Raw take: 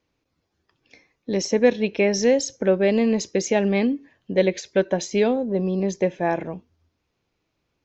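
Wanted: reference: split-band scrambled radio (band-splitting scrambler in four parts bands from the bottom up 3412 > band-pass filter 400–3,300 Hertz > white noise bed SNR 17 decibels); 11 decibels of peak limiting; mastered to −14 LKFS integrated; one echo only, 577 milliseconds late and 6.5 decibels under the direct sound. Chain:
brickwall limiter −15 dBFS
single-tap delay 577 ms −6.5 dB
band-splitting scrambler in four parts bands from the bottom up 3412
band-pass filter 400–3,300 Hz
white noise bed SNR 17 dB
level +10.5 dB

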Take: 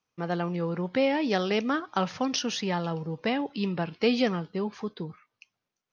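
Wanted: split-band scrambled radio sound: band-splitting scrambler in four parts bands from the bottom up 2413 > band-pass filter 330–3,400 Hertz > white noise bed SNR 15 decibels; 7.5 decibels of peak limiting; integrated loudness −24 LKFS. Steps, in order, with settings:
brickwall limiter −19.5 dBFS
band-splitting scrambler in four parts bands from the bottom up 2413
band-pass filter 330–3,400 Hz
white noise bed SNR 15 dB
level +6 dB

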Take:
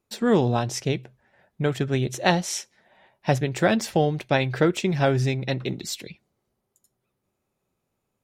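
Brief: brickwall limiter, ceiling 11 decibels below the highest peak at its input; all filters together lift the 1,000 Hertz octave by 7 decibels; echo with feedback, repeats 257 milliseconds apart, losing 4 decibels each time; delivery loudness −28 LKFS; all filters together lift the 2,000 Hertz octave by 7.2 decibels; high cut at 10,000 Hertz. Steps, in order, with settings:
low-pass filter 10,000 Hz
parametric band 1,000 Hz +9 dB
parametric band 2,000 Hz +6 dB
brickwall limiter −9 dBFS
repeating echo 257 ms, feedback 63%, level −4 dB
level −5.5 dB

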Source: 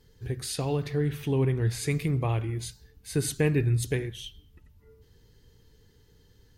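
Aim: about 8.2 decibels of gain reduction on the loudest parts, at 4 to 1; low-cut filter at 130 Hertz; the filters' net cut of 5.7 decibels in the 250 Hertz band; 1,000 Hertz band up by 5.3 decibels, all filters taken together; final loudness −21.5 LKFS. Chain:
high-pass filter 130 Hz
parametric band 250 Hz −8.5 dB
parametric band 1,000 Hz +7.5 dB
downward compressor 4 to 1, threshold −33 dBFS
level +15.5 dB

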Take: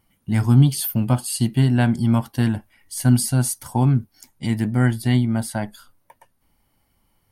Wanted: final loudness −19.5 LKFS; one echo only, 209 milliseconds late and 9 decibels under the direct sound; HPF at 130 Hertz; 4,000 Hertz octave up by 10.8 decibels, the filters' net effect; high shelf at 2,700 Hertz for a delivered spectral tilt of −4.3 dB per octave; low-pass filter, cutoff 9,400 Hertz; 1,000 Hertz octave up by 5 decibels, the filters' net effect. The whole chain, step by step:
high-pass filter 130 Hz
low-pass filter 9,400 Hz
parametric band 1,000 Hz +5.5 dB
high-shelf EQ 2,700 Hz +6 dB
parametric band 4,000 Hz +8.5 dB
single-tap delay 209 ms −9 dB
level +0.5 dB

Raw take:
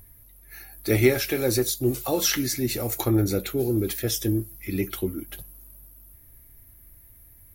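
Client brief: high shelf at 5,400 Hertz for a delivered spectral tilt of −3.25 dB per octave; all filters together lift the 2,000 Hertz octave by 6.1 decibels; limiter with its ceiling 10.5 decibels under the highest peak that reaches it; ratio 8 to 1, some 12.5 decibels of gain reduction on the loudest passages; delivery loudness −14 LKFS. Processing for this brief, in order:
parametric band 2,000 Hz +6 dB
high-shelf EQ 5,400 Hz +7 dB
downward compressor 8 to 1, threshold −24 dBFS
level +16.5 dB
brickwall limiter −4 dBFS

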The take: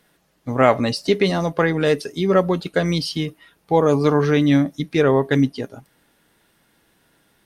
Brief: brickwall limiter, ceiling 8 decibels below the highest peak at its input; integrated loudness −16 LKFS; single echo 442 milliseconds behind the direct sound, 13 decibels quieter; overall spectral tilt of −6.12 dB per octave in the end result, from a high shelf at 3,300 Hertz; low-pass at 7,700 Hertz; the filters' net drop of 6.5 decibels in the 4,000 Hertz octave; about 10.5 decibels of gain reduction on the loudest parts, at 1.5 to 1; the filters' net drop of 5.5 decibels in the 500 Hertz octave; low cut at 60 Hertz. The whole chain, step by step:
high-pass filter 60 Hz
low-pass filter 7,700 Hz
parametric band 500 Hz −6.5 dB
high-shelf EQ 3,300 Hz −4.5 dB
parametric band 4,000 Hz −4.5 dB
downward compressor 1.5 to 1, threshold −44 dBFS
brickwall limiter −23 dBFS
single-tap delay 442 ms −13 dB
level +17.5 dB

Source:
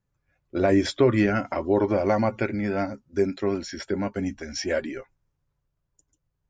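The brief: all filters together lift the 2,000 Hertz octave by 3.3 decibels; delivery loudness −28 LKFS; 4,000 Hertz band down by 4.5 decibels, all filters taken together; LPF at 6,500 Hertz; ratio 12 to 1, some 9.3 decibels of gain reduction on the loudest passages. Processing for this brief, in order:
low-pass filter 6,500 Hz
parametric band 2,000 Hz +5.5 dB
parametric band 4,000 Hz −6.5 dB
downward compressor 12 to 1, threshold −24 dBFS
level +2.5 dB

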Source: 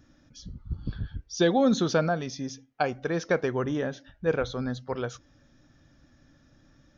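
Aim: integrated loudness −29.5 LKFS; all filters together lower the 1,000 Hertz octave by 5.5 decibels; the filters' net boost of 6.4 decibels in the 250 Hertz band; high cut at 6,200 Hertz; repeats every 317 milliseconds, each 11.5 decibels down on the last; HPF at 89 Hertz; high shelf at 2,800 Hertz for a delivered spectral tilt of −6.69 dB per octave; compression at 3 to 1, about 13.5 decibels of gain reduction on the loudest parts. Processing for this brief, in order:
high-pass filter 89 Hz
low-pass filter 6,200 Hz
parametric band 250 Hz +8.5 dB
parametric band 1,000 Hz −8.5 dB
high-shelf EQ 2,800 Hz −8.5 dB
downward compressor 3 to 1, threshold −31 dBFS
repeating echo 317 ms, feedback 27%, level −11.5 dB
level +5 dB

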